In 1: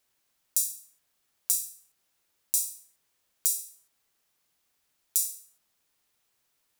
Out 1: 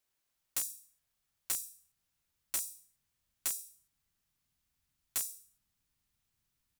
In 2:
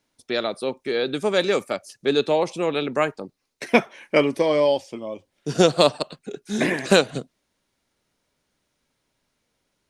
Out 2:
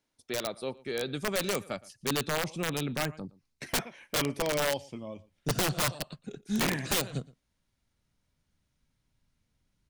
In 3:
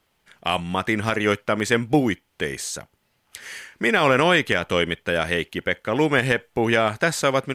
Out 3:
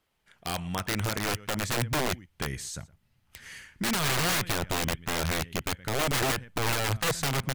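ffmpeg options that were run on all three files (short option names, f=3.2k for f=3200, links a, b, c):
-filter_complex "[0:a]asplit=2[a][b];[b]adelay=116.6,volume=-22dB,highshelf=f=4k:g=-2.62[c];[a][c]amix=inputs=2:normalize=0,asubboost=boost=9:cutoff=160,aeval=exprs='(mod(4.73*val(0)+1,2)-1)/4.73':c=same,volume=-8dB"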